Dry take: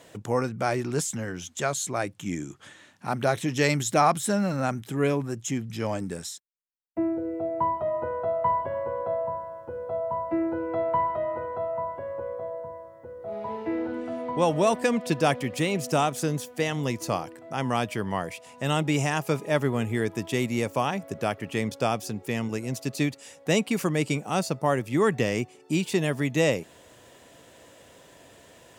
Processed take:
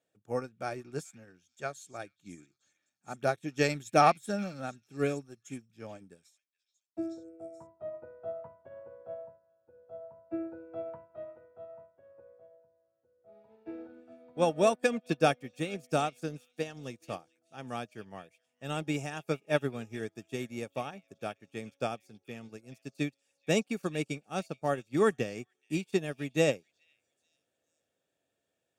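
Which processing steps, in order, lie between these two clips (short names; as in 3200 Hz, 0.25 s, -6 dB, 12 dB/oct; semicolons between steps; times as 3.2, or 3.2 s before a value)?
notch comb 1000 Hz; delay with a stepping band-pass 0.431 s, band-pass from 2900 Hz, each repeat 0.7 oct, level -6.5 dB; upward expander 2.5:1, over -39 dBFS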